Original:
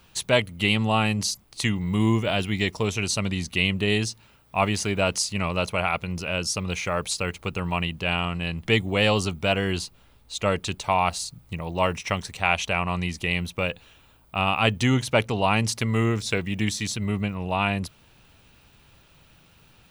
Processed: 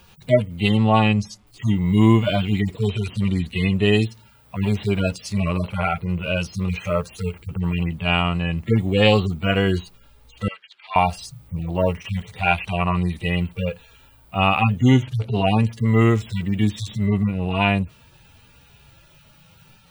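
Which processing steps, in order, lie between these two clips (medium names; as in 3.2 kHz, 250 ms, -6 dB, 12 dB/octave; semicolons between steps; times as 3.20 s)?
harmonic-percussive separation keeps harmonic; 0.77–1.47 s: distance through air 62 m; 10.48–10.96 s: Chebyshev band-pass 1.5–4.1 kHz, order 2; trim +7 dB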